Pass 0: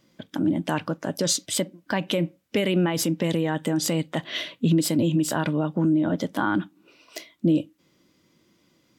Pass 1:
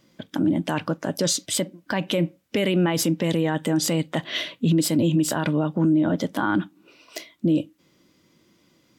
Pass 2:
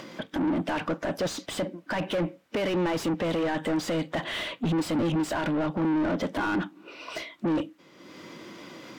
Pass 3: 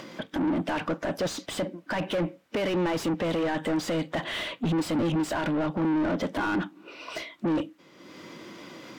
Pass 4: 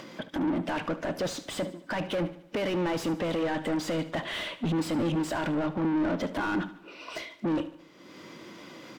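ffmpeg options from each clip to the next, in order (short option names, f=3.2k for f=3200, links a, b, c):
-af "alimiter=limit=-15.5dB:level=0:latency=1:release=19,volume=2.5dB"
-filter_complex "[0:a]acompressor=mode=upward:threshold=-38dB:ratio=2.5,asplit=2[a][b];[b]highpass=f=720:p=1,volume=27dB,asoftclip=type=tanh:threshold=-12.5dB[c];[a][c]amix=inputs=2:normalize=0,lowpass=f=1.3k:p=1,volume=-6dB,volume=-7dB"
-af anull
-af "aecho=1:1:74|148|222|296|370:0.178|0.0889|0.0445|0.0222|0.0111,volume=-2dB"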